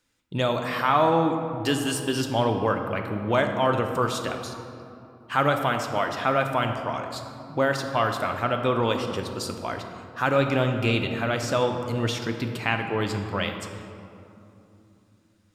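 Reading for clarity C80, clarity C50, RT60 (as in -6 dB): 7.0 dB, 6.0 dB, 2.9 s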